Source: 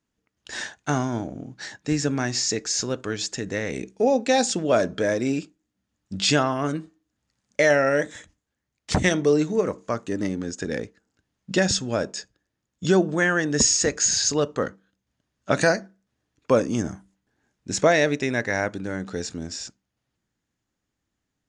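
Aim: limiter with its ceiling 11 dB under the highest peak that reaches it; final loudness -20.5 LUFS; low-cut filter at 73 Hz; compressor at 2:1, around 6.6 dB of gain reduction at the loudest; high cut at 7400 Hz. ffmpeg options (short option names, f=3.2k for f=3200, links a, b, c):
-af "highpass=73,lowpass=7.4k,acompressor=threshold=-26dB:ratio=2,volume=11.5dB,alimiter=limit=-9.5dB:level=0:latency=1"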